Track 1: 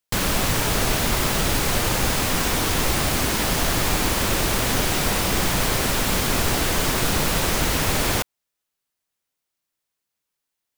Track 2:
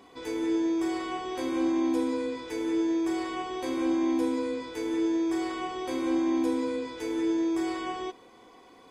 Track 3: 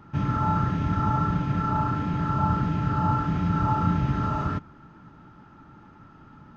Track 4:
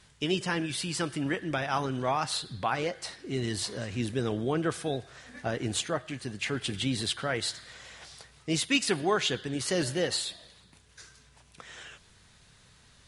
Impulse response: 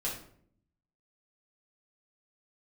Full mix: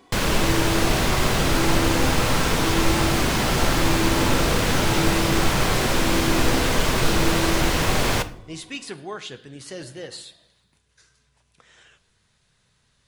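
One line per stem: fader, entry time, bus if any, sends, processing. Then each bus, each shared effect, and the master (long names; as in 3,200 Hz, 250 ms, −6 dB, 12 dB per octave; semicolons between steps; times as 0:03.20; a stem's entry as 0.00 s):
−0.5 dB, 0.00 s, send −11.5 dB, high-shelf EQ 9,500 Hz −12 dB
−0.5 dB, 0.00 s, no send, no processing
−7.0 dB, 1.20 s, no send, no processing
−8.5 dB, 0.00 s, send −14 dB, no processing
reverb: on, RT60 0.60 s, pre-delay 5 ms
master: no processing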